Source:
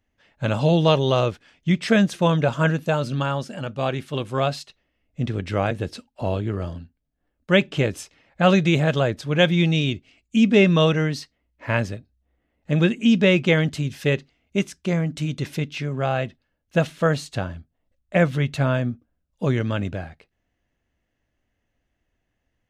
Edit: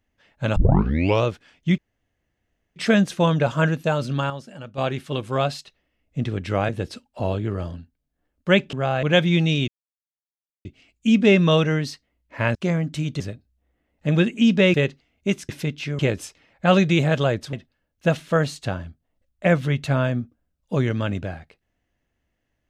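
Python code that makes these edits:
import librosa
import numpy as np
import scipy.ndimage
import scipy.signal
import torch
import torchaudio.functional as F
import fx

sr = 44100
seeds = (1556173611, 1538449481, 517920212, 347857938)

y = fx.edit(x, sr, fx.tape_start(start_s=0.56, length_s=0.69),
    fx.insert_room_tone(at_s=1.78, length_s=0.98),
    fx.clip_gain(start_s=3.32, length_s=0.48, db=-7.5),
    fx.swap(start_s=7.75, length_s=1.54, other_s=15.93, other_length_s=0.3),
    fx.insert_silence(at_s=9.94, length_s=0.97),
    fx.cut(start_s=13.38, length_s=0.65),
    fx.move(start_s=14.78, length_s=0.65, to_s=11.84), tone=tone)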